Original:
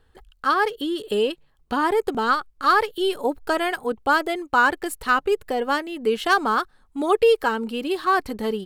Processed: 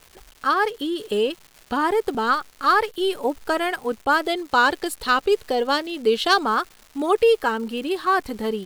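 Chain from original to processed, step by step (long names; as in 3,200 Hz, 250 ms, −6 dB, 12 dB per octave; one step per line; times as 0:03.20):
0:04.23–0:06.43: octave-band graphic EQ 500/2,000/4,000 Hz +3/−3/+10 dB
surface crackle 390 per second −36 dBFS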